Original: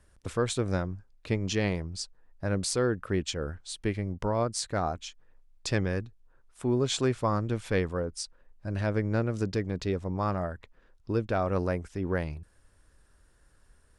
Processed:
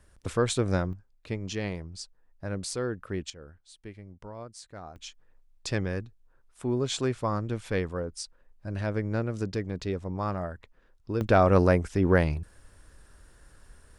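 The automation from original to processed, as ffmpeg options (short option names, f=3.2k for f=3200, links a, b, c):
-af "asetnsamples=n=441:p=0,asendcmd='0.93 volume volume -4.5dB;3.3 volume volume -14dB;4.96 volume volume -1.5dB;11.21 volume volume 8dB',volume=2.5dB"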